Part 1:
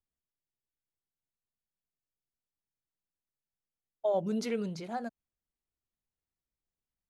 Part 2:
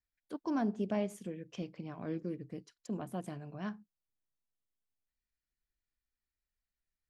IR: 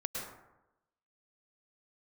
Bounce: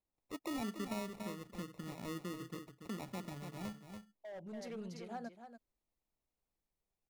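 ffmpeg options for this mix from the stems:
-filter_complex "[0:a]asoftclip=type=hard:threshold=0.0355,adelay=200,volume=0.668,asplit=2[s0][s1];[s1]volume=0.188[s2];[1:a]acrusher=samples=28:mix=1:aa=0.000001,volume=0.794,asplit=3[s3][s4][s5];[s4]volume=0.335[s6];[s5]apad=whole_len=321774[s7];[s0][s7]sidechaincompress=threshold=0.00126:ratio=5:attack=28:release=1270[s8];[s2][s6]amix=inputs=2:normalize=0,aecho=0:1:285:1[s9];[s8][s3][s9]amix=inputs=3:normalize=0,acompressor=threshold=0.00891:ratio=2"

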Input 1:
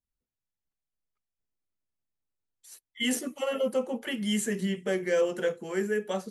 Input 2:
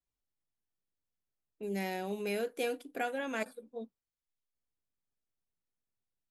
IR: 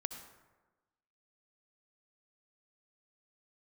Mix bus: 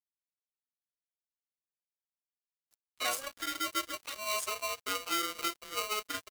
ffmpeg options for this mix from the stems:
-filter_complex "[0:a]flanger=delay=0.2:depth=6.7:regen=-61:speed=0.45:shape=triangular,acrusher=bits=5:mode=log:mix=0:aa=0.000001,aeval=exprs='val(0)*sgn(sin(2*PI*850*n/s))':c=same,volume=1.26,asplit=2[s0][s1];[1:a]lowpass=2200,aeval=exprs='val(0)*pow(10,-27*(0.5-0.5*cos(2*PI*0.66*n/s))/20)':c=same,adelay=50,volume=1.41[s2];[s1]apad=whole_len=280244[s3];[s2][s3]sidechaingate=range=0.0224:threshold=0.00562:ratio=16:detection=peak[s4];[s0][s4]amix=inputs=2:normalize=0,highpass=f=1200:p=1,aeval=exprs='sgn(val(0))*max(abs(val(0))-0.00708,0)':c=same"

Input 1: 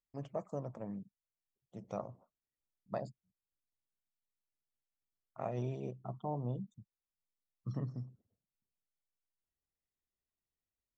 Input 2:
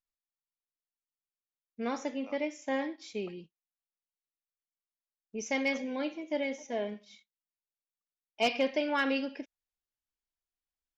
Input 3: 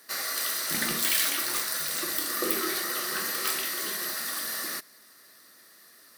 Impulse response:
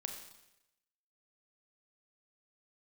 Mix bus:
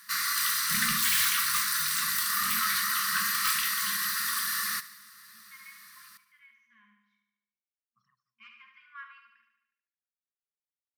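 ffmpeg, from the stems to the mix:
-filter_complex "[0:a]highpass=1000,aphaser=in_gain=1:out_gain=1:delay=3:decay=0.61:speed=1.3:type=sinusoidal,adelay=300,volume=0.133[s0];[1:a]acrossover=split=400 2300:gain=0.141 1 0.0631[s1][s2][s3];[s1][s2][s3]amix=inputs=3:normalize=0,volume=0.188,asplit=3[s4][s5][s6];[s5]volume=0.422[s7];[2:a]aeval=exprs='0.0891*(abs(mod(val(0)/0.0891+3,4)-2)-1)':c=same,volume=1.19,asplit=2[s8][s9];[s9]volume=0.141[s10];[s6]apad=whole_len=497147[s11];[s0][s11]sidechaincompress=threshold=0.001:ratio=8:attack=16:release=799[s12];[s7][s10]amix=inputs=2:normalize=0,aecho=0:1:73|146|219|292|365|438|511|584|657:1|0.59|0.348|0.205|0.121|0.0715|0.0422|0.0249|0.0147[s13];[s12][s4][s8][s13]amix=inputs=4:normalize=0,afftfilt=real='re*(1-between(b*sr/4096,230,1000))':imag='im*(1-between(b*sr/4096,230,1000))':win_size=4096:overlap=0.75,equalizer=f=1300:t=o:w=1.6:g=3.5"

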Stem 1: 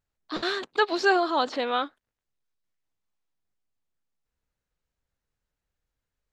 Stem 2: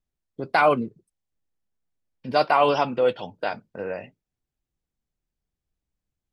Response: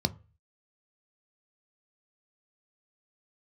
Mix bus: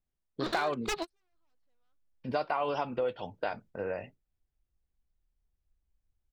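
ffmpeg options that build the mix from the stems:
-filter_complex "[0:a]aeval=exprs='0.0841*(abs(mod(val(0)/0.0841+3,4)-2)-1)':c=same,adelay=100,volume=0.841[s0];[1:a]highshelf=f=3600:g=-7.5,volume=0.75,asplit=2[s1][s2];[s2]apad=whole_len=283318[s3];[s0][s3]sidechaingate=range=0.00178:threshold=0.00282:ratio=16:detection=peak[s4];[s4][s1]amix=inputs=2:normalize=0,asubboost=boost=4:cutoff=81,acompressor=threshold=0.0398:ratio=5"

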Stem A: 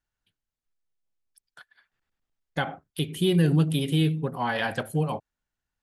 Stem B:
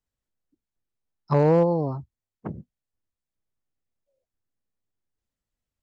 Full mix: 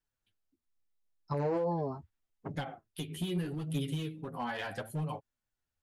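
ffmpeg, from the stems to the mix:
-filter_complex "[0:a]acompressor=threshold=0.0398:ratio=2,aphaser=in_gain=1:out_gain=1:delay=3:decay=0.21:speed=1.6:type=sinusoidal,asoftclip=type=hard:threshold=0.0794,volume=0.668[s0];[1:a]equalizer=f=160:w=1.5:g=-3.5,volume=0.75[s1];[s0][s1]amix=inputs=2:normalize=0,flanger=delay=6.5:depth=6:regen=8:speed=0.78:shape=triangular,alimiter=limit=0.0631:level=0:latency=1:release=22"

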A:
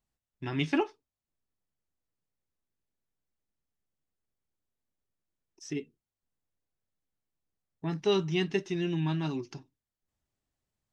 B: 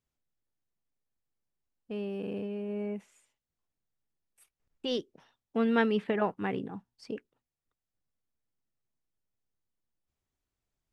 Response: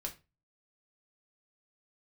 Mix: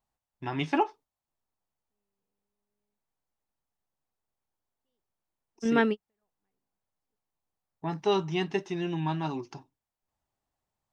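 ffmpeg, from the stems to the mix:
-filter_complex "[0:a]equalizer=f=860:t=o:w=1.1:g=11,volume=0.794,asplit=2[s0][s1];[1:a]volume=1.26[s2];[s1]apad=whole_len=481939[s3];[s2][s3]sidechaingate=range=0.00141:threshold=0.00355:ratio=16:detection=peak[s4];[s0][s4]amix=inputs=2:normalize=0"

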